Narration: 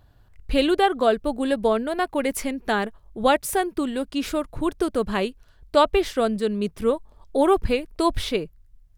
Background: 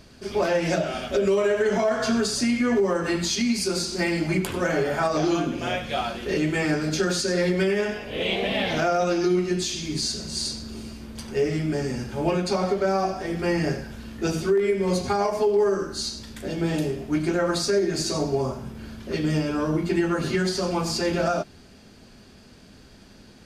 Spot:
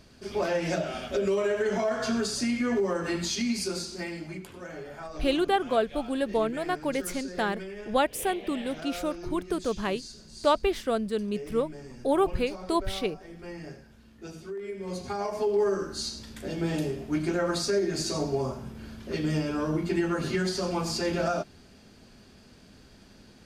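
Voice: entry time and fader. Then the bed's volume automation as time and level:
4.70 s, −5.5 dB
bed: 0:03.62 −5 dB
0:04.48 −17 dB
0:14.45 −17 dB
0:15.58 −4 dB

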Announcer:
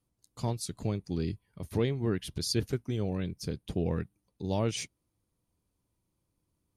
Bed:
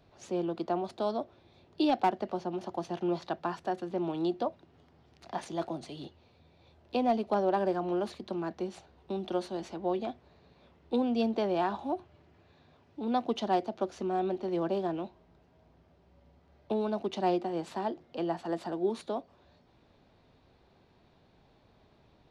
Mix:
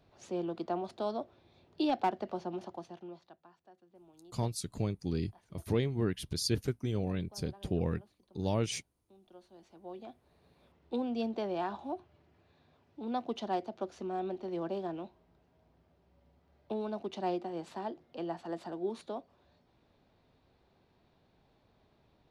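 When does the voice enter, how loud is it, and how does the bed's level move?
3.95 s, −1.5 dB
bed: 0:02.59 −3.5 dB
0:03.50 −27 dB
0:09.17 −27 dB
0:10.46 −5.5 dB

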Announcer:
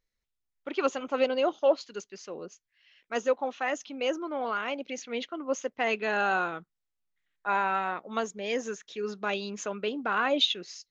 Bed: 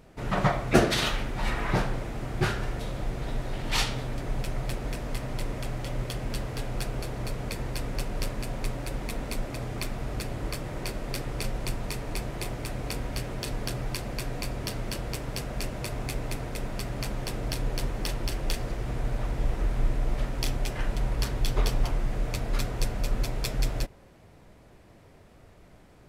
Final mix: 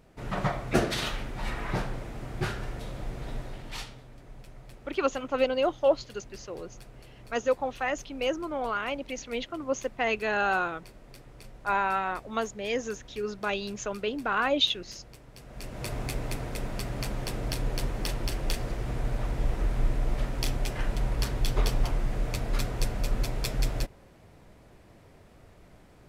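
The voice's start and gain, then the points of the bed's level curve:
4.20 s, +0.5 dB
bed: 0:03.38 −4.5 dB
0:04.03 −17 dB
0:15.34 −17 dB
0:15.88 −0.5 dB

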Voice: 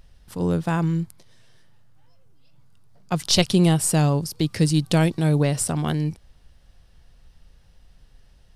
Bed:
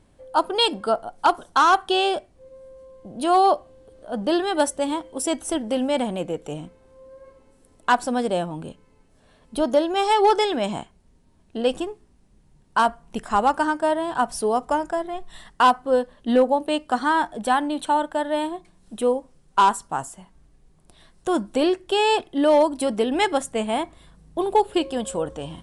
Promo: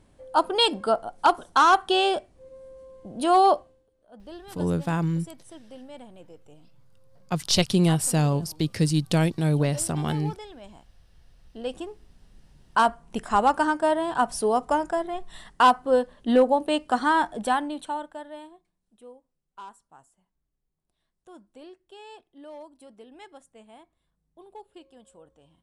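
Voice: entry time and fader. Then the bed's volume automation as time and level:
4.20 s, −3.0 dB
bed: 0:03.58 −1 dB
0:03.91 −21 dB
0:11.05 −21 dB
0:12.21 −1 dB
0:17.38 −1 dB
0:18.90 −26 dB

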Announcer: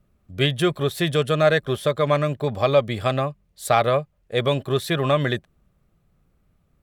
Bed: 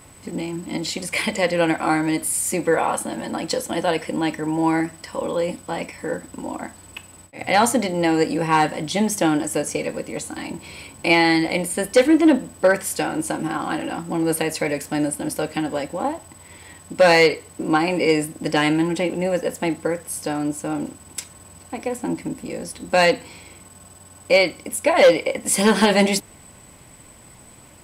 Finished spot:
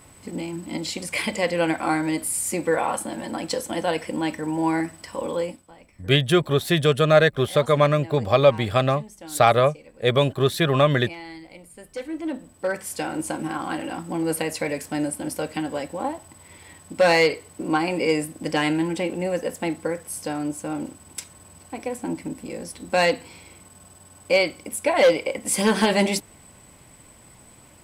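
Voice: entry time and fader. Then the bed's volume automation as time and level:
5.70 s, +2.0 dB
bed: 0:05.42 −3 dB
0:05.74 −22.5 dB
0:11.65 −22.5 dB
0:13.14 −3.5 dB

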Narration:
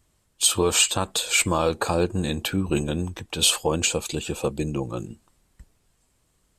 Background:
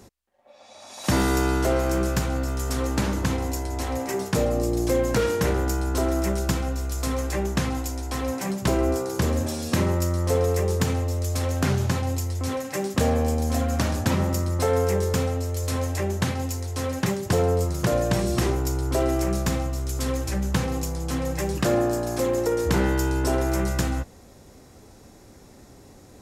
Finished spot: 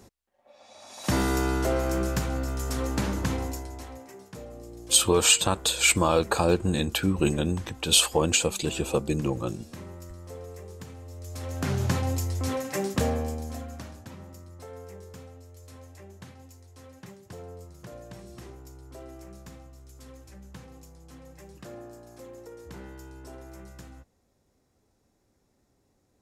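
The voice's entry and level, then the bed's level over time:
4.50 s, 0.0 dB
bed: 0:03.42 −3.5 dB
0:04.15 −19.5 dB
0:10.96 −19.5 dB
0:11.89 −1.5 dB
0:12.88 −1.5 dB
0:14.09 −21.5 dB

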